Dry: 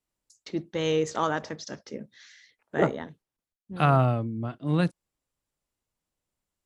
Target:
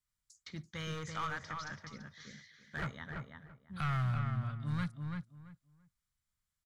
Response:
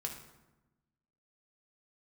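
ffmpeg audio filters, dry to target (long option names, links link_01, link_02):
-filter_complex "[0:a]asoftclip=type=hard:threshold=-20.5dB,acrossover=split=3600[link_01][link_02];[link_02]acompressor=threshold=-49dB:ratio=4:attack=1:release=60[link_03];[link_01][link_03]amix=inputs=2:normalize=0,firequalizer=gain_entry='entry(110,0);entry(330,-22);entry(780,-15);entry(1200,-2)':delay=0.05:min_phase=1,asplit=2[link_04][link_05];[link_05]acompressor=threshold=-38dB:ratio=6,volume=2dB[link_06];[link_04][link_06]amix=inputs=2:normalize=0,bandreject=frequency=2700:width=7.6,asplit=2[link_07][link_08];[link_08]adelay=336,lowpass=frequency=2200:poles=1,volume=-4dB,asplit=2[link_09][link_10];[link_10]adelay=336,lowpass=frequency=2200:poles=1,volume=0.21,asplit=2[link_11][link_12];[link_12]adelay=336,lowpass=frequency=2200:poles=1,volume=0.21[link_13];[link_09][link_11][link_13]amix=inputs=3:normalize=0[link_14];[link_07][link_14]amix=inputs=2:normalize=0,volume=-7.5dB"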